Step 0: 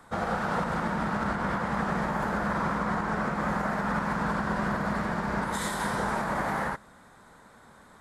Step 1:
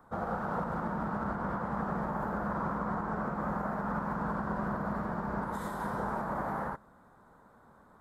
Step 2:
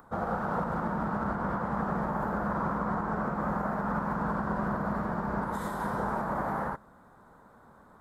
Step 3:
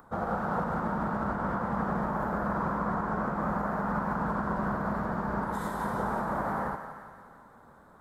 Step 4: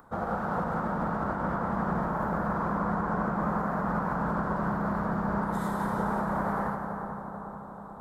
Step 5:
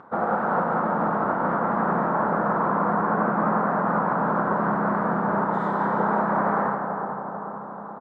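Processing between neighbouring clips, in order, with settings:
band shelf 4400 Hz -13.5 dB 2.8 oct; gain -4.5 dB
upward compressor, threshold -57 dBFS; gain +3 dB
thinning echo 0.172 s, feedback 64%, high-pass 660 Hz, level -9.5 dB; reverb RT60 2.0 s, pre-delay 93 ms, DRR 13.5 dB
analogue delay 0.438 s, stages 4096, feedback 63%, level -7.5 dB
vibrato 0.67 Hz 25 cents; BPF 230–2100 Hz; doubler 28 ms -13 dB; gain +8 dB

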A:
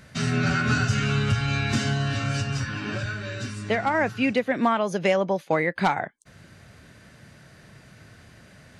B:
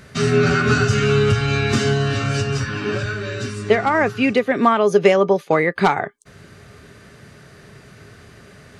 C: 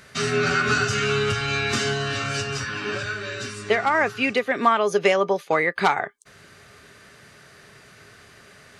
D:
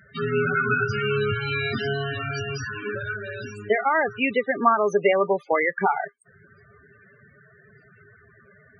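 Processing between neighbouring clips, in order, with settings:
small resonant body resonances 410/1200 Hz, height 13 dB, ringing for 90 ms; gain +5 dB
low shelf 480 Hz -11.5 dB
loudest bins only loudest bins 16

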